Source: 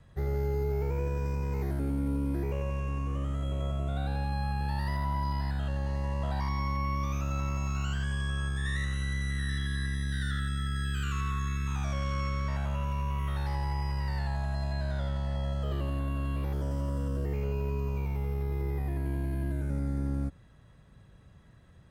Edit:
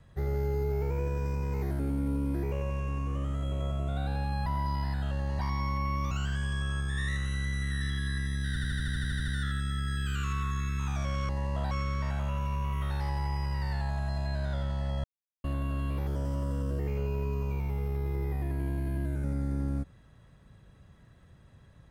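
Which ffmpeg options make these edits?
-filter_complex "[0:a]asplit=18[a][b][c][d][e][f][g][h][i][j][k][l][m][n][o][p][q][r];[a]atrim=end=4.462[s];[b]atrim=start=5.028:end=5.962[t];[c]atrim=start=6.378:end=7.102[u];[d]atrim=start=7.788:end=10.242[v];[e]atrim=start=10.158:end=10.242[w];[f]atrim=start=10.158:end=10.242[x];[g]atrim=start=10.158:end=10.242[y];[h]atrim=start=10.158:end=10.242[z];[i]atrim=start=10.158:end=10.242[aa];[j]atrim=start=10.158:end=10.242[ab];[k]atrim=start=10.158:end=10.242[ac];[l]atrim=start=10.158:end=10.242[ad];[m]atrim=start=10.158:end=10.242[ae];[n]atrim=start=10.158:end=12.172[af];[o]atrim=start=5.958:end=6.382[ag];[p]atrim=start=12.168:end=15.5,asetpts=PTS-STARTPTS,afade=t=out:st=3.328:d=0.004:c=hsin[ah];[q]atrim=start=15.5:end=15.9,asetpts=PTS-STARTPTS,volume=0[ai];[r]atrim=start=15.9,asetpts=PTS-STARTPTS,afade=t=in:d=0.004:c=hsin[aj];[s][t]acrossfade=d=0.004:c1=hsin:c2=hsin[ak];[ak][u]acrossfade=d=0.004:c1=hsin:c2=hsin[al];[al][v]acrossfade=d=0.004:c1=hsin:c2=hsin[am];[am][w]acrossfade=d=0.004:c1=hsin:c2=hsin[an];[an][x]acrossfade=d=0.004:c1=hsin:c2=hsin[ao];[ao][y]acrossfade=d=0.004:c1=hsin:c2=hsin[ap];[ap][z]acrossfade=d=0.004:c1=hsin:c2=hsin[aq];[aq][aa]acrossfade=d=0.004:c1=hsin:c2=hsin[ar];[ar][ab]acrossfade=d=0.004:c1=hsin:c2=hsin[as];[as][ac]acrossfade=d=0.004:c1=hsin:c2=hsin[at];[at][ad]acrossfade=d=0.004:c1=hsin:c2=hsin[au];[au][ae]acrossfade=d=0.004:c1=hsin:c2=hsin[av];[av][af]acrossfade=d=0.004:c1=hsin:c2=hsin[aw];[aw][ag]acrossfade=d=0.004:c1=hsin:c2=hsin[ax];[ah][ai][aj]concat=n=3:v=0:a=1[ay];[ax][ay]acrossfade=d=0.004:c1=hsin:c2=hsin"

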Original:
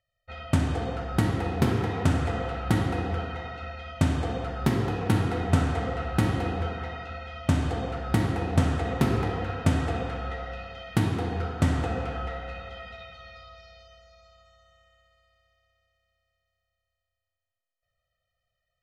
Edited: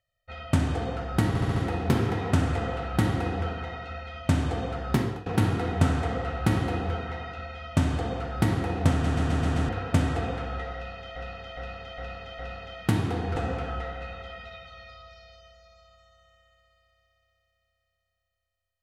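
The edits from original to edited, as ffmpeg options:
-filter_complex "[0:a]asplit=17[a][b][c][d][e][f][g][h][i][j][k][l][m][n][o][p][q];[a]atrim=end=1.352[r];[b]atrim=start=1.278:end=1.352[s];[c]atrim=start=1.278:end=1.352[t];[d]atrim=start=1.278:end=1.352[u];[e]atrim=start=1.278:end=4.98,asetpts=PTS-STARTPTS,afade=t=out:st=3.412:d=0.29:silence=0.125893[v];[f]atrim=start=4.98:end=8.762,asetpts=PTS-STARTPTS,afade=t=in:d=0.004:c=hsin:silence=0.125893[w];[g]atrim=start=8.628:end=8.762[x];[h]atrim=start=8.628:end=8.762[y];[i]atrim=start=8.628:end=8.762[z];[j]atrim=start=8.628:end=8.762[aa];[k]atrim=start=8.628:end=8.762[ab];[l]atrim=start=9.408:end=10.882[ac];[m]atrim=start=10.468:end=10.882[ad];[n]atrim=start=10.468:end=10.882[ae];[o]atrim=start=10.468:end=10.882[af];[p]atrim=start=10.468:end=11.442[ag];[q]atrim=start=11.828[ah];[r][s]acrossfade=d=0.004:c1=hsin:c2=hsin[ai];[ai][t]acrossfade=d=0.004:c1=hsin:c2=hsin[aj];[aj][u]acrossfade=d=0.004:c1=hsin:c2=hsin[ak];[v][w]concat=n=2:v=0:a=1[al];[ak][al]acrossfade=d=0.004:c1=hsin:c2=hsin[am];[am][x]acrossfade=d=0.004:c1=hsin:c2=hsin[an];[an][y]acrossfade=d=0.004:c1=hsin:c2=hsin[ao];[ao][z]acrossfade=d=0.004:c1=hsin:c2=hsin[ap];[ap][aa]acrossfade=d=0.004:c1=hsin:c2=hsin[aq];[aq][ab]acrossfade=d=0.004:c1=hsin:c2=hsin[ar];[ar][ac]acrossfade=d=0.004:c1=hsin:c2=hsin[as];[as][ad]acrossfade=d=0.004:c1=hsin:c2=hsin[at];[at][ae]acrossfade=d=0.004:c1=hsin:c2=hsin[au];[au][af]acrossfade=d=0.004:c1=hsin:c2=hsin[av];[av][ag]acrossfade=d=0.004:c1=hsin:c2=hsin[aw];[aw][ah]acrossfade=d=0.004:c1=hsin:c2=hsin"

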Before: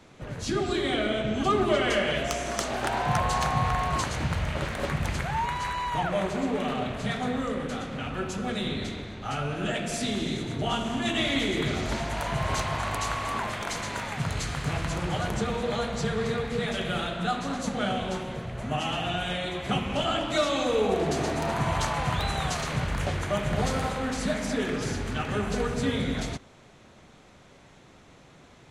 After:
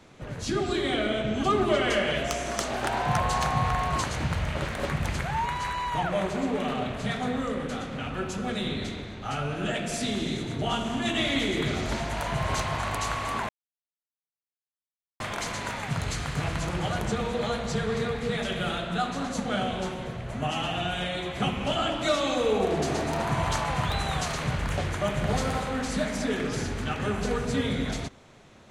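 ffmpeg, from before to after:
-filter_complex "[0:a]asplit=2[a][b];[a]atrim=end=13.49,asetpts=PTS-STARTPTS,afade=t=out:st=13.486:d=0.004:c=hsin,apad=pad_dur=1.71[c];[b]atrim=start=13.49,asetpts=PTS-STARTPTS,afade=t=in:d=0.004:c=hsin[d];[c][d]concat=n=2:v=0:a=1"

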